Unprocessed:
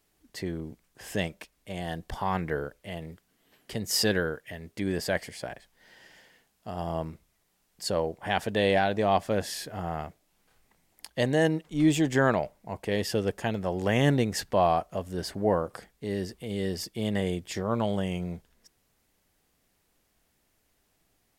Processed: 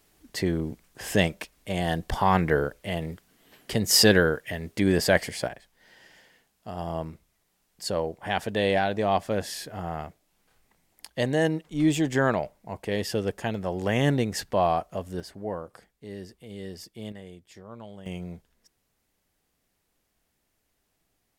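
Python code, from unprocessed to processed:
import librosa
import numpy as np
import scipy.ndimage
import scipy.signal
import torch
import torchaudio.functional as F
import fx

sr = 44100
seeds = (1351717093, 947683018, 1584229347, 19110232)

y = fx.gain(x, sr, db=fx.steps((0.0, 7.5), (5.48, 0.0), (15.2, -8.0), (17.12, -15.5), (18.06, -3.5)))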